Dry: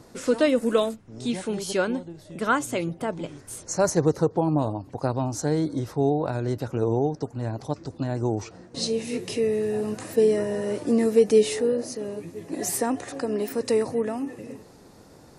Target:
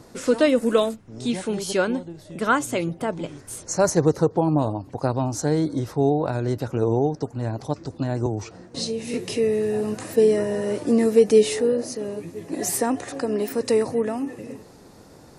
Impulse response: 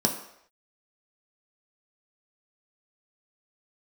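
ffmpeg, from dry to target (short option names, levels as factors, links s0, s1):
-filter_complex "[0:a]asettb=1/sr,asplit=3[s0][s1][s2];[s0]atrim=end=8.264[s3];[s1]atrim=start=8.26:end=9.14,asetpts=PTS-STARTPTS,afade=t=in:d=0.004:c=qsin,afade=t=out:st=0.876:d=0.004:c=qsin,acrossover=split=160[s4][s5];[s5]acompressor=threshold=0.0398:ratio=4[s6];[s4][s6]amix=inputs=2:normalize=0[s7];[s2]atrim=start=9.136[s8];[s3][s7]acrossfade=d=0.004:c1=hsin:c2=qsin[s9];[s9][s8]acrossfade=d=0.004:c1=qsin:c2=hsin,volume=1.33"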